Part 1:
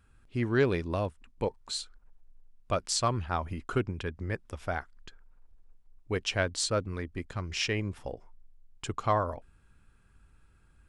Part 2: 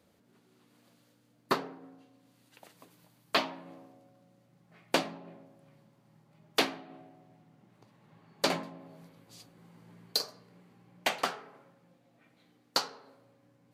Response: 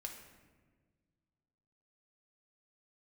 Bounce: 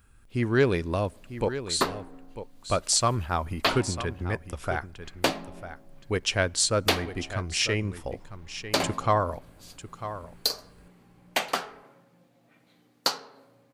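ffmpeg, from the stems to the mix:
-filter_complex "[0:a]highshelf=frequency=9500:gain=8.5,volume=3dB,asplit=3[link_01][link_02][link_03];[link_02]volume=-20.5dB[link_04];[link_03]volume=-11.5dB[link_05];[1:a]adelay=300,volume=3dB[link_06];[2:a]atrim=start_sample=2205[link_07];[link_04][link_07]afir=irnorm=-1:irlink=0[link_08];[link_05]aecho=0:1:948:1[link_09];[link_01][link_06][link_08][link_09]amix=inputs=4:normalize=0,highshelf=frequency=8000:gain=4"

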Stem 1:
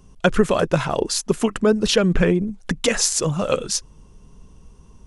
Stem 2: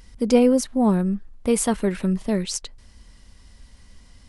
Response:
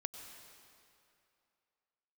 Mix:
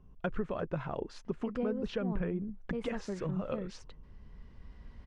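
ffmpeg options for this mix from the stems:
-filter_complex "[0:a]lowshelf=frequency=170:gain=5,volume=-12dB,asplit=2[link_01][link_02];[1:a]adelay=1250,volume=-2dB[link_03];[link_02]apad=whole_len=244243[link_04];[link_03][link_04]sidechaincompress=threshold=-36dB:ratio=5:attack=12:release=1500[link_05];[link_01][link_05]amix=inputs=2:normalize=0,lowpass=2000,acompressor=threshold=-35dB:ratio=2"

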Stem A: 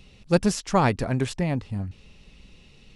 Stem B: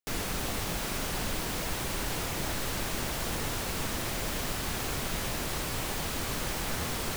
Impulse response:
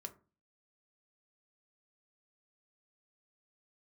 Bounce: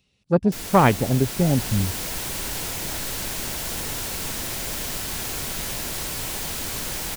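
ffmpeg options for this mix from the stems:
-filter_complex "[0:a]acrossover=split=3700[link_01][link_02];[link_02]acompressor=threshold=-50dB:ratio=4:attack=1:release=60[link_03];[link_01][link_03]amix=inputs=2:normalize=0,highpass=66,afwtdn=0.0398,volume=0dB[link_04];[1:a]bandreject=frequency=1200:width=15,adelay=450,volume=-8dB[link_05];[link_04][link_05]amix=inputs=2:normalize=0,highshelf=frequency=3600:gain=8.5,dynaudnorm=framelen=200:gausssize=5:maxgain=8dB"

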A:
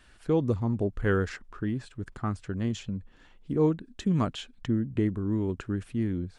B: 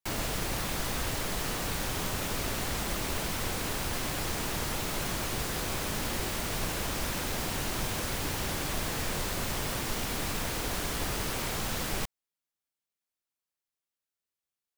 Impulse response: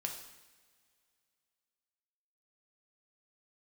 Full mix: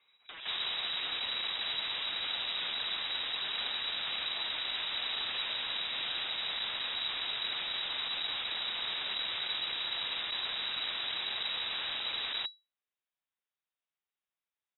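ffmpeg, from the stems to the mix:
-filter_complex "[0:a]aeval=exprs='(mod(25.1*val(0)+1,2)-1)/25.1':channel_layout=same,volume=-12dB[link_01];[1:a]asoftclip=type=hard:threshold=-31.5dB,adelay=400,volume=0dB[link_02];[link_01][link_02]amix=inputs=2:normalize=0,lowpass=frequency=3300:width_type=q:width=0.5098,lowpass=frequency=3300:width_type=q:width=0.6013,lowpass=frequency=3300:width_type=q:width=0.9,lowpass=frequency=3300:width_type=q:width=2.563,afreqshift=-3900"

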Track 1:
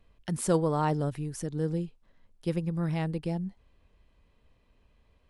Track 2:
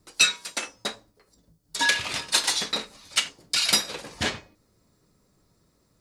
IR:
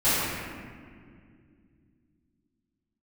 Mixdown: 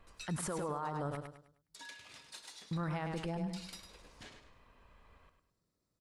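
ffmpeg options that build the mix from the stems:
-filter_complex "[0:a]equalizer=frequency=1200:width=0.81:gain=12.5,acompressor=threshold=-27dB:ratio=6,volume=-0.5dB,asplit=3[link_01][link_02][link_03];[link_01]atrim=end=1.17,asetpts=PTS-STARTPTS,afade=type=out:start_time=1.166:duration=0.004:curve=hsin[link_04];[link_02]atrim=start=1.17:end=2.71,asetpts=PTS-STARTPTS,volume=0[link_05];[link_03]atrim=start=2.71,asetpts=PTS-STARTPTS,afade=type=in:duration=0.004:curve=hsin[link_06];[link_04][link_05][link_06]concat=n=3:v=0:a=1,asplit=2[link_07][link_08];[link_08]volume=-8.5dB[link_09];[1:a]acompressor=threshold=-38dB:ratio=2,volume=-18.5dB,asplit=2[link_10][link_11];[link_11]volume=-8.5dB[link_12];[link_09][link_12]amix=inputs=2:normalize=0,aecho=0:1:103|206|309|412|515:1|0.34|0.116|0.0393|0.0134[link_13];[link_07][link_10][link_13]amix=inputs=3:normalize=0,alimiter=level_in=5.5dB:limit=-24dB:level=0:latency=1:release=45,volume=-5.5dB"

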